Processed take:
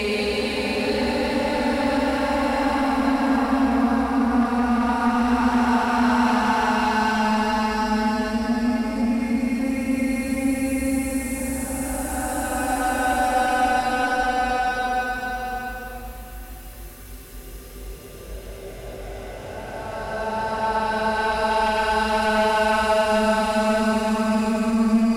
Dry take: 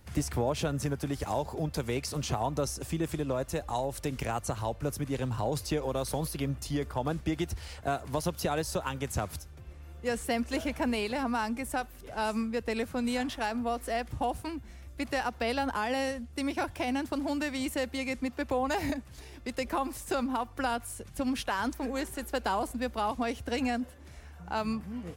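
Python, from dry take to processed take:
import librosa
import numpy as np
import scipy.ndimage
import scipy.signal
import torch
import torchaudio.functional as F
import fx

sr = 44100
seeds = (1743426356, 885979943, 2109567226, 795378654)

p1 = fx.hpss(x, sr, part='percussive', gain_db=-5)
p2 = fx.paulstretch(p1, sr, seeds[0], factor=19.0, window_s=0.25, from_s=11.06)
p3 = fx.fold_sine(p2, sr, drive_db=10, ceiling_db=-17.5)
p4 = p2 + F.gain(torch.from_numpy(p3), -11.0).numpy()
p5 = fx.rev_schroeder(p4, sr, rt60_s=2.1, comb_ms=33, drr_db=3.0)
y = F.gain(torch.from_numpy(p5), 3.5).numpy()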